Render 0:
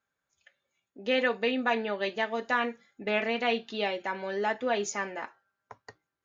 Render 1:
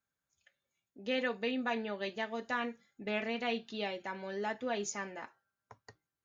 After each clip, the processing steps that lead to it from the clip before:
bass and treble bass +7 dB, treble +5 dB
level −8 dB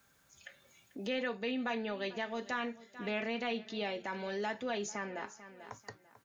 transient designer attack −4 dB, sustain +2 dB
repeating echo 442 ms, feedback 18%, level −20.5 dB
multiband upward and downward compressor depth 70%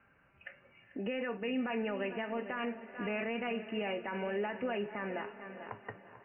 Chebyshev low-pass filter 2,900 Hz, order 10
brickwall limiter −32 dBFS, peak gain reduction 8.5 dB
feedback delay with all-pass diffusion 452 ms, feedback 42%, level −13.5 dB
level +4.5 dB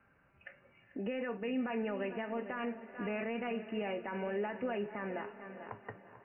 high-frequency loss of the air 320 metres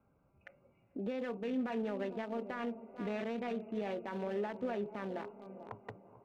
adaptive Wiener filter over 25 samples

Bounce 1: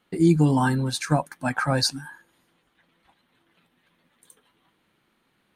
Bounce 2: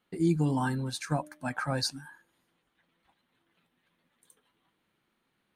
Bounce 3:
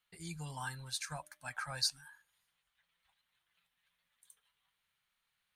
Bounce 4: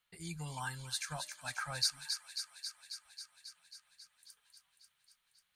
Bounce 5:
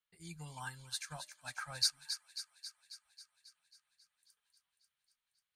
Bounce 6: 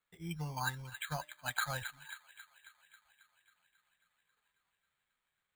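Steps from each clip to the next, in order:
hum removal 302.1 Hz, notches 2; level −8 dB
guitar amp tone stack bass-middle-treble 10-0-10
delay with a high-pass on its return 271 ms, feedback 73%, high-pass 2,300 Hz, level −6 dB; level +1 dB
expander for the loud parts 1.5 to 1, over −54 dBFS; level +1.5 dB
bad sample-rate conversion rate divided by 8×, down filtered, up hold; level +8.5 dB

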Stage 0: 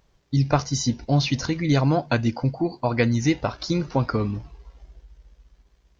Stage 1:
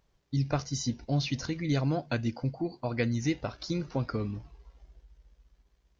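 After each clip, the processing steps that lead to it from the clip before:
dynamic equaliser 950 Hz, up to −6 dB, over −40 dBFS, Q 2
level −8 dB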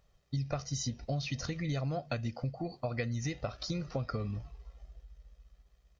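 comb filter 1.6 ms, depth 51%
downward compressor, threshold −31 dBFS, peak gain reduction 9 dB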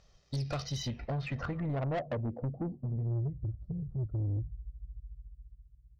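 low-pass filter sweep 5,600 Hz → 110 Hz, 0:00.34–0:03.31
soft clipping −34 dBFS, distortion −10 dB
level +4.5 dB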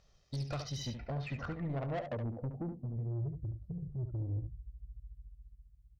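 single-tap delay 71 ms −8 dB
level −4 dB

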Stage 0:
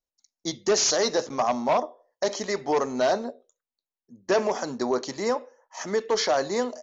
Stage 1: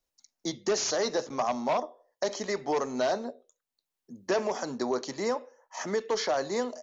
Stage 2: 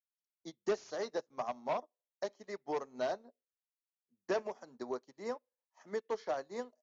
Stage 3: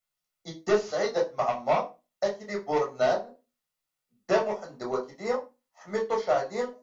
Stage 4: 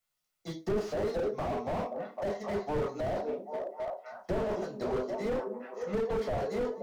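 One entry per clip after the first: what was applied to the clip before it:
multiband upward and downward compressor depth 40%; level −4.5 dB
high-shelf EQ 4,900 Hz −8.5 dB; expander for the loud parts 2.5 to 1, over −46 dBFS; level −4 dB
convolution reverb RT60 0.25 s, pre-delay 10 ms, DRR −0.5 dB; level +6 dB
echo through a band-pass that steps 262 ms, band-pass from 260 Hz, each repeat 0.7 octaves, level −7.5 dB; slew-rate limiting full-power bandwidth 14 Hz; level +2 dB

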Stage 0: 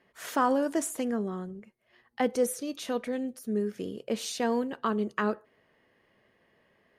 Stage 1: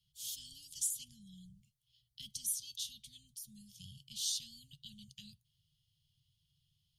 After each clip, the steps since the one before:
Chebyshev band-stop filter 150–3,200 Hz, order 5
level +1.5 dB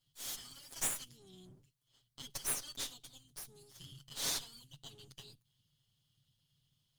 lower of the sound and its delayed copy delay 7.3 ms
level +2 dB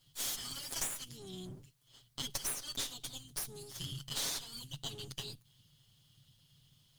downward compressor 12 to 1, threshold −45 dBFS, peak gain reduction 15.5 dB
level +11 dB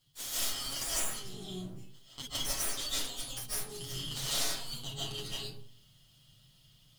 convolution reverb RT60 0.55 s, pre-delay 110 ms, DRR −9 dB
level −3.5 dB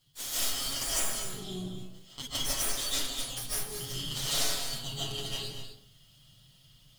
reverb whose tail is shaped and stops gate 270 ms rising, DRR 7 dB
level +2.5 dB

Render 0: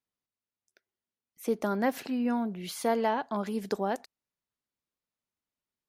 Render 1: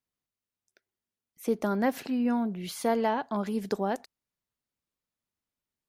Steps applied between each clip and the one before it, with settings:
low-shelf EQ 190 Hz +5.5 dB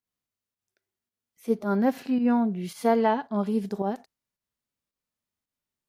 harmonic and percussive parts rebalanced percussive −15 dB
fake sidechain pumping 110 BPM, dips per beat 1, −9 dB, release 124 ms
level +5 dB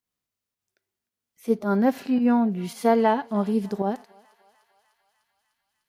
feedback echo with a high-pass in the loop 300 ms, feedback 78%, high-pass 850 Hz, level −22.5 dB
level +2.5 dB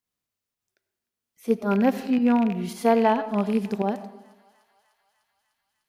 loose part that buzzes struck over −29 dBFS, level −25 dBFS
on a send at −14.5 dB: convolution reverb RT60 0.85 s, pre-delay 50 ms

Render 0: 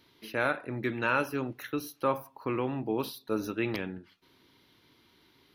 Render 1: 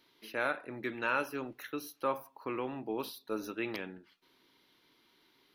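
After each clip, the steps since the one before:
parametric band 75 Hz −14.5 dB 2.2 octaves
level −3.5 dB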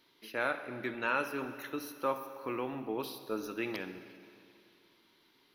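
convolution reverb RT60 2.5 s, pre-delay 44 ms, DRR 10 dB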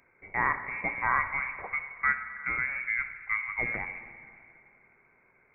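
voice inversion scrambler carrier 2,500 Hz
level +5.5 dB

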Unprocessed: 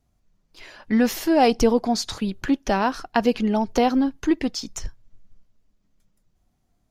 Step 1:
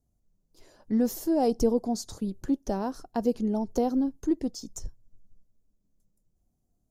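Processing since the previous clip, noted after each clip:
drawn EQ curve 490 Hz 0 dB, 2,500 Hz −20 dB, 7,000 Hz 0 dB, 14,000 Hz +2 dB
level −5.5 dB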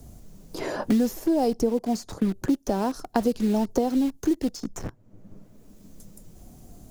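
in parallel at −9.5 dB: bit reduction 6 bits
on the sum: multiband upward and downward compressor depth 100%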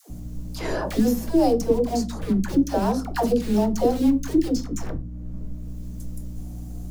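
mains hum 60 Hz, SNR 10 dB
all-pass dispersion lows, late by 104 ms, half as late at 510 Hz
convolution reverb RT60 0.30 s, pre-delay 6 ms, DRR 8.5 dB
level +2.5 dB

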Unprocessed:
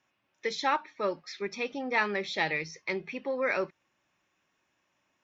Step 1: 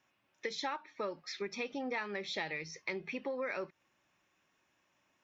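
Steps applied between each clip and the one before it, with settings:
downward compressor 6 to 1, threshold −35 dBFS, peak gain reduction 12.5 dB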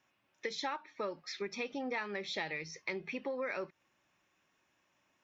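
no processing that can be heard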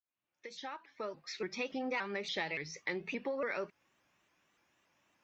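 fade in at the beginning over 1.60 s
pitch modulation by a square or saw wave saw up 3.5 Hz, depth 160 cents
level +1 dB

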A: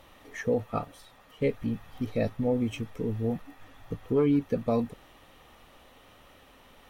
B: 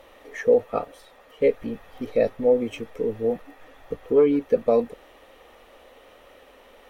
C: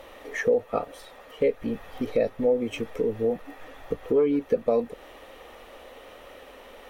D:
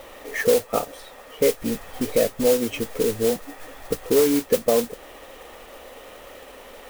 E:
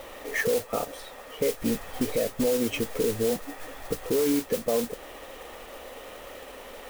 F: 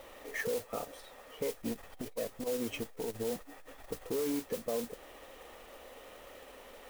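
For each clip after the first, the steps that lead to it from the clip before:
graphic EQ with 10 bands 125 Hz −11 dB, 500 Hz +11 dB, 2,000 Hz +4 dB
downward compressor 2 to 1, threshold −30 dBFS, peak gain reduction 9.5 dB; level +4.5 dB
noise that follows the level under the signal 11 dB; level +3.5 dB
brickwall limiter −16 dBFS, peak gain reduction 9 dB
saturating transformer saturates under 210 Hz; level −9 dB

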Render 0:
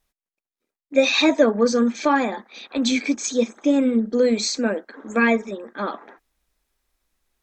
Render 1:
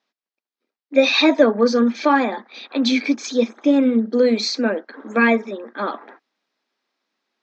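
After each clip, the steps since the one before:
Chebyshev band-pass filter 230–5,000 Hz, order 3
level +3 dB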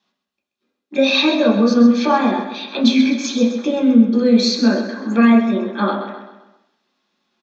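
downward compressor 2 to 1, threshold −24 dBFS, peak gain reduction 9 dB
repeating echo 130 ms, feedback 44%, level −9.5 dB
convolution reverb RT60 0.40 s, pre-delay 3 ms, DRR −2.5 dB
level +1.5 dB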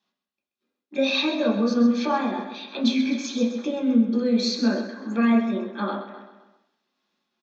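amplitude modulation by smooth noise, depth 50%
level −5.5 dB

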